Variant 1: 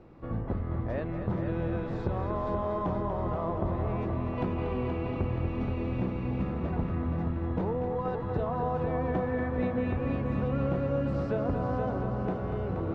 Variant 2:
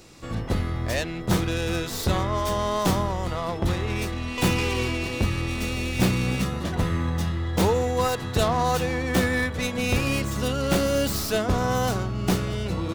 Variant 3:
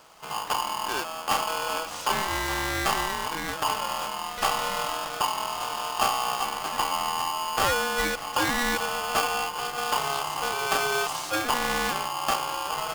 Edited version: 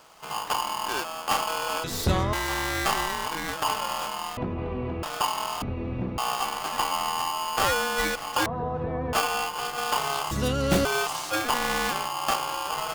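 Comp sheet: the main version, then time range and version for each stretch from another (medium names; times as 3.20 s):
3
1.84–2.33 s: from 2
4.37–5.03 s: from 1
5.62–6.18 s: from 1
8.46–9.13 s: from 1
10.31–10.85 s: from 2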